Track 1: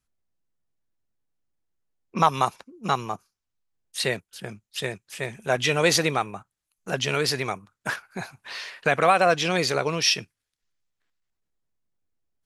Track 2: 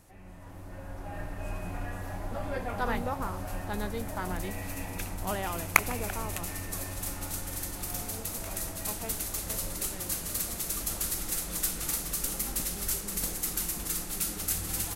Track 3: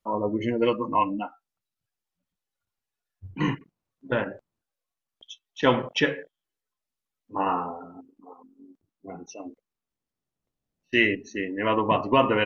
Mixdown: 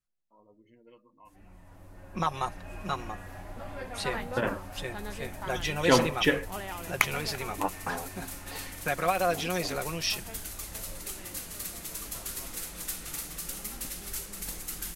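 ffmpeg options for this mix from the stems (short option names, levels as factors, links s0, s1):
-filter_complex "[0:a]aecho=1:1:5.6:0.59,volume=0.316,asplit=2[s0][s1];[1:a]adynamicequalizer=threshold=0.00282:dfrequency=2400:dqfactor=0.74:tfrequency=2400:tqfactor=0.74:attack=5:release=100:ratio=0.375:range=2:mode=boostabove:tftype=bell,flanger=delay=0.6:depth=7.5:regen=77:speed=0.22:shape=sinusoidal,adelay=1250,volume=0.841[s2];[2:a]adelay=250,volume=0.841[s3];[s1]apad=whole_len=564538[s4];[s3][s4]sidechaingate=range=0.0251:threshold=0.00316:ratio=16:detection=peak[s5];[s0][s2][s5]amix=inputs=3:normalize=0"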